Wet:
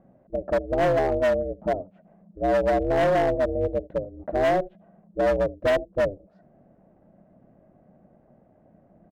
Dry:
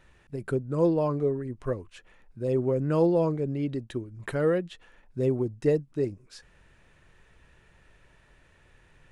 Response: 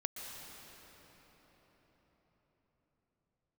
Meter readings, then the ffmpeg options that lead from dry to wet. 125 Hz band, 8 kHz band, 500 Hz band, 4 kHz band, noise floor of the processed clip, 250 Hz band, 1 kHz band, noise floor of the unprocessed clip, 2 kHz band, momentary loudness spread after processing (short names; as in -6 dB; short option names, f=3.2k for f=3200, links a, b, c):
-4.5 dB, n/a, +4.5 dB, +8.5 dB, -60 dBFS, -2.0 dB, +11.5 dB, -61 dBFS, +10.5 dB, 10 LU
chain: -filter_complex "[0:a]asplit=2[a][b];[b]aecho=0:1:77:0.0708[c];[a][c]amix=inputs=2:normalize=0,aeval=exprs='val(0)*sin(2*PI*190*n/s)':c=same,asoftclip=type=tanh:threshold=-15dB,lowpass=f=630:t=q:w=4.9,volume=20.5dB,asoftclip=hard,volume=-20.5dB,volume=2.5dB"